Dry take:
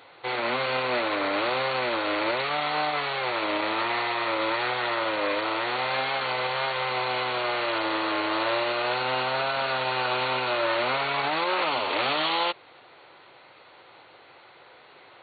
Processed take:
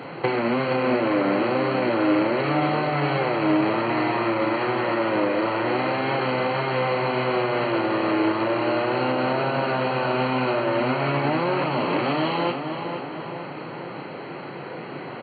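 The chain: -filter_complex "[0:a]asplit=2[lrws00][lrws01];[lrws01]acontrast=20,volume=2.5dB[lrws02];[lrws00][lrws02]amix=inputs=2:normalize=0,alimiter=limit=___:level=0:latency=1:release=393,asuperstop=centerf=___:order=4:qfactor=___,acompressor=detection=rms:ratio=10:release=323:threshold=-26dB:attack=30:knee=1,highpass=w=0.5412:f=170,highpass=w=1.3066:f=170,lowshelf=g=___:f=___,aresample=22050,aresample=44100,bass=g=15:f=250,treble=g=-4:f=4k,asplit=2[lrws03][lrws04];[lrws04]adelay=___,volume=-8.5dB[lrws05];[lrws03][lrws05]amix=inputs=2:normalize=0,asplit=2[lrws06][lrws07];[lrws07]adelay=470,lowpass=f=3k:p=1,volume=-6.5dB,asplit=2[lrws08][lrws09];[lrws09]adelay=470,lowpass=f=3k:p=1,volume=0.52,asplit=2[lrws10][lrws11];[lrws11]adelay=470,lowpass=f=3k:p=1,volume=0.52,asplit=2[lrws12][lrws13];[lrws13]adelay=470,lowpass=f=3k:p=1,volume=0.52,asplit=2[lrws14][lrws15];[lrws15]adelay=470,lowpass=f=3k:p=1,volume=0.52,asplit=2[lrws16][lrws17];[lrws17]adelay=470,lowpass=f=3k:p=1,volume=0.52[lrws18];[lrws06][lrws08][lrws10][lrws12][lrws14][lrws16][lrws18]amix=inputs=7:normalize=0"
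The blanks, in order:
-11.5dB, 3600, 4.7, 12, 450, 35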